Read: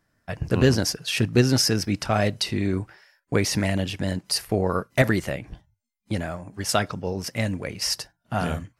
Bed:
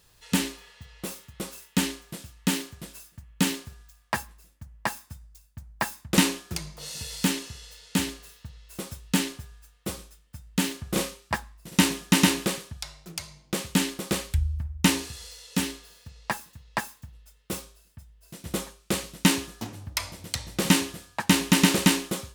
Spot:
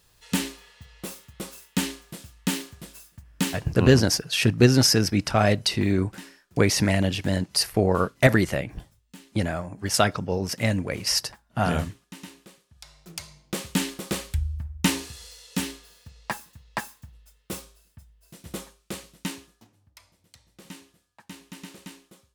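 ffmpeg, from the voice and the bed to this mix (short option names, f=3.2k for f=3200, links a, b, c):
-filter_complex "[0:a]adelay=3250,volume=2dB[a];[1:a]volume=20.5dB,afade=t=out:st=3.37:d=0.57:silence=0.0794328,afade=t=in:st=12.68:d=0.47:silence=0.0841395,afade=t=out:st=17.85:d=1.84:silence=0.0841395[b];[a][b]amix=inputs=2:normalize=0"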